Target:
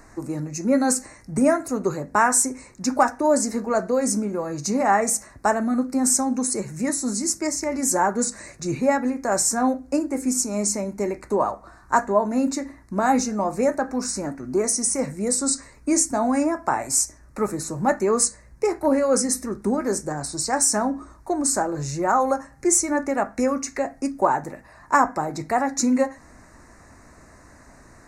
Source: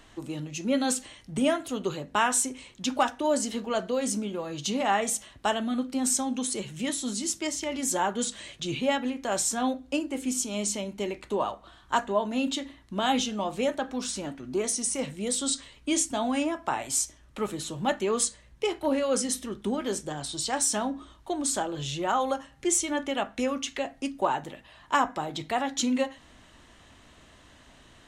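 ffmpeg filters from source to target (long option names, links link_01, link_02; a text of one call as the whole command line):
ffmpeg -i in.wav -af "asuperstop=centerf=3200:order=4:qfactor=1.1,volume=6.5dB" out.wav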